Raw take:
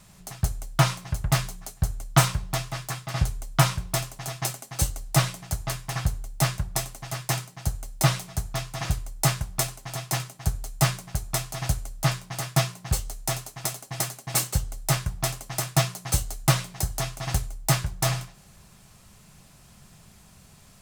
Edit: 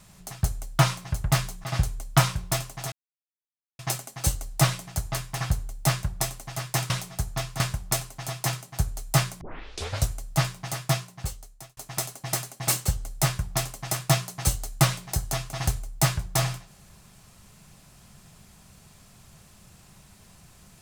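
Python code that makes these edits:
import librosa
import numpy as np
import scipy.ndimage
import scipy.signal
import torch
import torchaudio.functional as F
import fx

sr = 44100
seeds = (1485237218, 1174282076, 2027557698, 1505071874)

y = fx.edit(x, sr, fx.cut(start_s=1.64, length_s=1.42),
    fx.insert_silence(at_s=4.34, length_s=0.87),
    fx.cut(start_s=7.45, length_s=0.63),
    fx.cut(start_s=8.78, length_s=0.49),
    fx.tape_start(start_s=11.08, length_s=0.69),
    fx.fade_out_span(start_s=12.32, length_s=1.12), tone=tone)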